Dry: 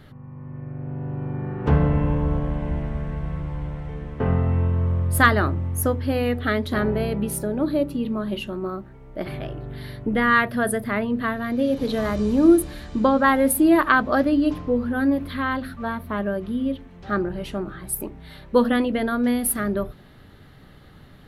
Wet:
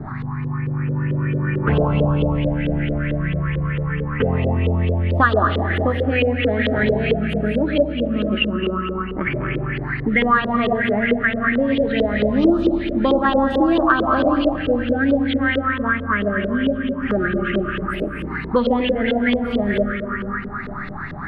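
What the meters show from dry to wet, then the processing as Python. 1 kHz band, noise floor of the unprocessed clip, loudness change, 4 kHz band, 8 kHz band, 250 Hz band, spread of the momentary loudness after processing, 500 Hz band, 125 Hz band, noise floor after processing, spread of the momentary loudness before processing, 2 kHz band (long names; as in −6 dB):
+3.0 dB, −47 dBFS, +3.0 dB, +7.0 dB, below −30 dB, +3.0 dB, 8 LU, +5.0 dB, +4.0 dB, −29 dBFS, 15 LU, +4.5 dB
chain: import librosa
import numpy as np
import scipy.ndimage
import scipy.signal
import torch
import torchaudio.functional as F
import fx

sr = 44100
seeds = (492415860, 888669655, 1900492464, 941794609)

p1 = fx.high_shelf(x, sr, hz=4000.0, db=7.0)
p2 = fx.rev_freeverb(p1, sr, rt60_s=2.5, hf_ratio=0.75, predelay_ms=55, drr_db=3.0)
p3 = fx.env_phaser(p2, sr, low_hz=500.0, high_hz=2100.0, full_db=-12.5)
p4 = p3 + fx.echo_single(p3, sr, ms=138, db=-14.5, dry=0)
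p5 = fx.filter_lfo_lowpass(p4, sr, shape='saw_up', hz=4.5, low_hz=440.0, high_hz=3400.0, q=5.1)
p6 = scipy.signal.sosfilt(scipy.signal.butter(2, 7700.0, 'lowpass', fs=sr, output='sos'), p5)
p7 = fx.peak_eq(p6, sr, hz=2500.0, db=3.5, octaves=1.4)
y = fx.band_squash(p7, sr, depth_pct=70)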